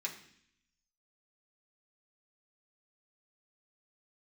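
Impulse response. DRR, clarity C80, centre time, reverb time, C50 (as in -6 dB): -2.5 dB, 12.5 dB, 17 ms, 0.65 s, 10.0 dB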